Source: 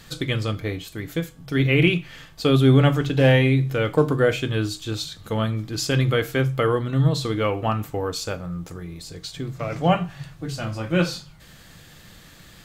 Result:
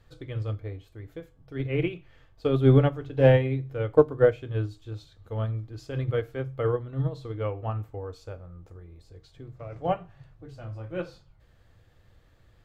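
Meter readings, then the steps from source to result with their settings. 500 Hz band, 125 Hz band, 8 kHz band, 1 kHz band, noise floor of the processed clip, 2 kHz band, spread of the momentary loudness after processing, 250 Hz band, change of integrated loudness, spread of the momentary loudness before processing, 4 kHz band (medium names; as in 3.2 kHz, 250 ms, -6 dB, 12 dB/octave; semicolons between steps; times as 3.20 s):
-2.5 dB, -6.0 dB, under -25 dB, -7.5 dB, -60 dBFS, -12.0 dB, 23 LU, -8.0 dB, -4.5 dB, 15 LU, -17.5 dB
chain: FFT filter 110 Hz 0 dB, 160 Hz -15 dB, 470 Hz -4 dB, 8 kHz -22 dB; upward expansion 2.5:1, over -28 dBFS; trim +8 dB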